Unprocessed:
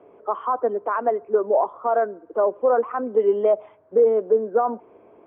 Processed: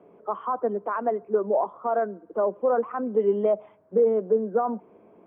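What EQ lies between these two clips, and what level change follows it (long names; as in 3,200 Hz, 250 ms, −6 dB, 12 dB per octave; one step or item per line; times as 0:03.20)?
parametric band 190 Hz +13 dB 0.6 octaves
−4.5 dB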